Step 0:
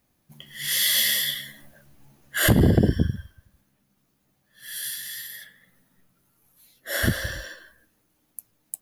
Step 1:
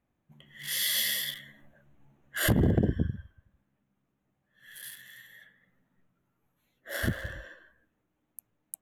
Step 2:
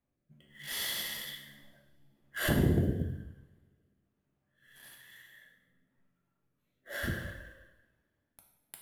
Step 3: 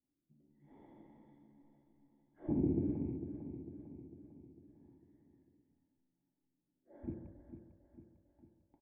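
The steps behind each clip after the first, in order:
local Wiener filter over 9 samples; trim -6.5 dB
rotary cabinet horn 1.1 Hz; in parallel at -7 dB: sample-rate reducer 12 kHz, jitter 20%; on the sum: two-slope reverb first 0.85 s, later 2.5 s, from -27 dB, DRR 1 dB; trim -7.5 dB
rattle on loud lows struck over -35 dBFS, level -27 dBFS; cascade formant filter u; on a send: feedback delay 450 ms, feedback 53%, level -10 dB; on the sum: trim +2.5 dB

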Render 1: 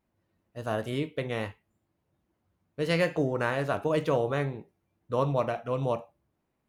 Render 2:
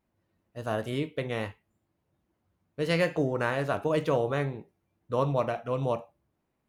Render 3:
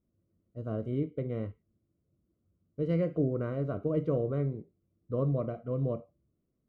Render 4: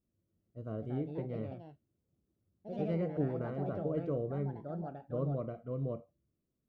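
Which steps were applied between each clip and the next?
no audible change
boxcar filter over 51 samples; trim +1.5 dB
ever faster or slower copies 340 ms, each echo +3 st, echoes 2, each echo -6 dB; trim -5.5 dB

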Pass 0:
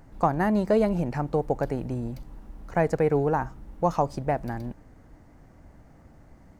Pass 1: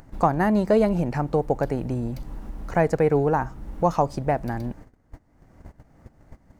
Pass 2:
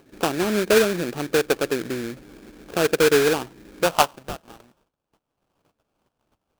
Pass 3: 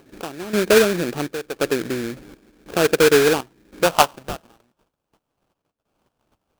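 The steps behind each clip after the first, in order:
gate -46 dBFS, range -26 dB; in parallel at +1.5 dB: upward compressor, threshold -24 dBFS; on the sum: trim -4 dB
band-pass sweep 390 Hz -> 3.8 kHz, 3.82–4.46 s; sample-rate reducer 2 kHz, jitter 20%; trim +6 dB
trance gate "xx...xxxxx" 141 bpm -12 dB; trim +3 dB

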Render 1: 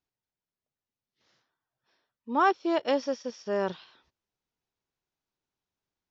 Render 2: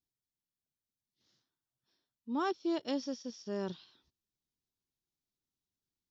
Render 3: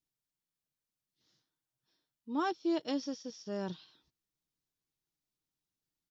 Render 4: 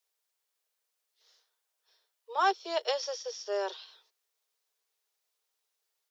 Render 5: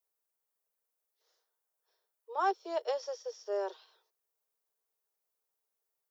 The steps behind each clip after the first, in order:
high-order bell 1.1 kHz -10.5 dB 2.9 oct; trim -2.5 dB
comb 6.4 ms, depth 33%
steep high-pass 400 Hz 96 dB/octave; trim +9 dB
peaking EQ 3.6 kHz -13.5 dB 2.5 oct

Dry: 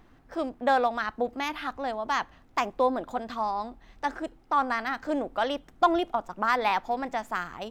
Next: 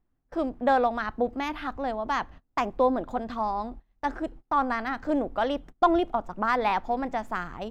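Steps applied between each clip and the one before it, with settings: gate -46 dBFS, range -25 dB; tilt EQ -2 dB/octave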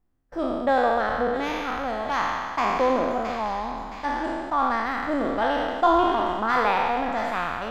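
spectral sustain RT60 1.94 s; feedback echo behind a high-pass 669 ms, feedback 51%, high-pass 1.9 kHz, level -6 dB; trim -1.5 dB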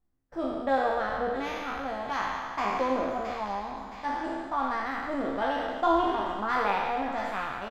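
doubling 15 ms -5 dB; trim -6.5 dB

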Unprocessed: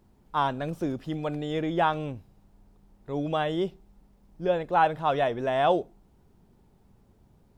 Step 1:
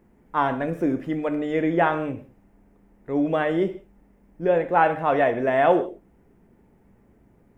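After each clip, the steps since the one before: graphic EQ 250/500/2000/4000 Hz +7/+6/+12/-11 dB; gated-style reverb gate 200 ms falling, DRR 7.5 dB; trim -1.5 dB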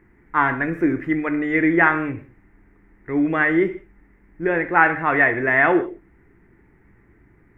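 FFT filter 120 Hz 0 dB, 230 Hz -8 dB, 330 Hz +2 dB, 560 Hz -12 dB, 2 kHz +10 dB, 3.1 kHz -9 dB, 5 kHz -11 dB; trim +5 dB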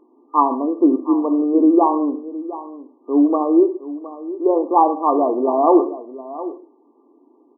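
FFT band-pass 230–1200 Hz; delay 714 ms -15 dB; trim +5.5 dB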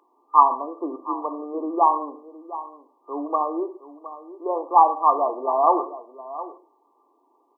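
high-pass 1.1 kHz 12 dB/octave; trim +5.5 dB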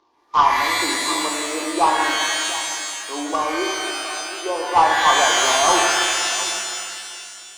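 CVSD coder 32 kbps; pitch-shifted reverb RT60 2.2 s, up +12 st, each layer -2 dB, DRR 1.5 dB

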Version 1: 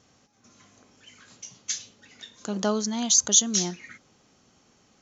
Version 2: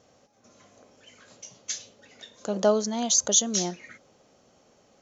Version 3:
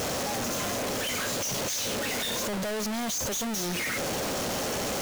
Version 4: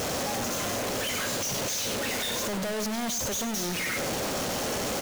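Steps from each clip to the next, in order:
peaking EQ 570 Hz +12 dB 0.89 oct; trim -2.5 dB
one-bit comparator
delay 98 ms -11 dB

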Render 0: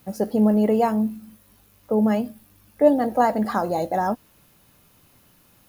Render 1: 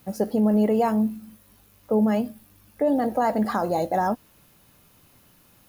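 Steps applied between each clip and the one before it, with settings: peak limiter -13.5 dBFS, peak gain reduction 8.5 dB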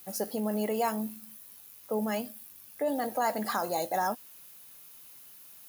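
tilt EQ +3.5 dB/octave; trim -4.5 dB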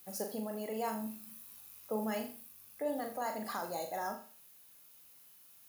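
gain riding 0.5 s; on a send: flutter echo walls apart 7 m, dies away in 0.4 s; on the sum: trim -8 dB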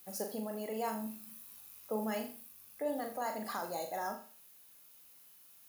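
peaking EQ 120 Hz -3.5 dB 0.74 oct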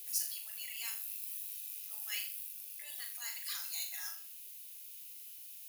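Chebyshev high-pass 2.5 kHz, order 3; trim +9.5 dB

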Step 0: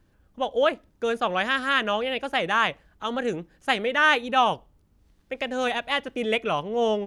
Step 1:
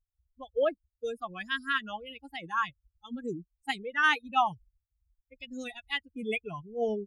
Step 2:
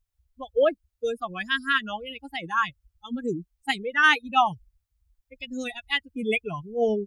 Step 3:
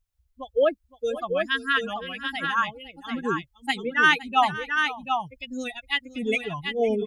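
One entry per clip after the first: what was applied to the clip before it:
expander on every frequency bin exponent 3; trim -1.5 dB
dynamic bell 970 Hz, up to -3 dB, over -39 dBFS, Q 1.6; trim +7 dB
multi-tap echo 513/737 ms -16.5/-5.5 dB

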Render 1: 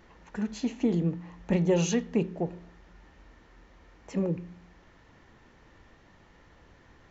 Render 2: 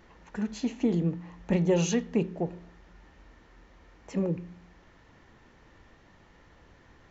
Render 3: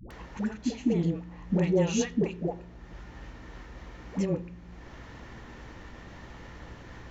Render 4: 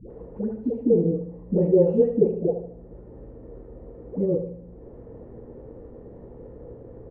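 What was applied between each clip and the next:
no audible change
upward compressor, threshold -35 dBFS; hum 60 Hz, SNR 18 dB; phase dispersion highs, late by 107 ms, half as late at 480 Hz
resonant low-pass 470 Hz, resonance Q 4.9; feedback delay 75 ms, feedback 46%, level -9 dB; on a send at -16 dB: reverberation, pre-delay 70 ms

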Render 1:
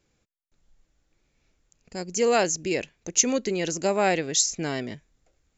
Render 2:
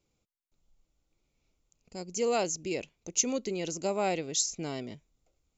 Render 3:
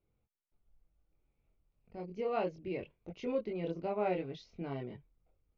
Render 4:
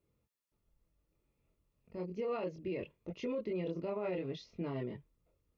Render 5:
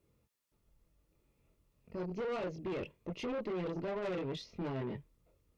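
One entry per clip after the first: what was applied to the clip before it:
peaking EQ 1.7 kHz -15 dB 0.29 oct; trim -6.5 dB
chorus voices 6, 0.63 Hz, delay 23 ms, depth 1.4 ms; Gaussian low-pass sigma 3.3 samples
comb of notches 760 Hz; peak limiter -33 dBFS, peak gain reduction 10.5 dB; trim +3.5 dB
valve stage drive 40 dB, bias 0.3; trim +6 dB

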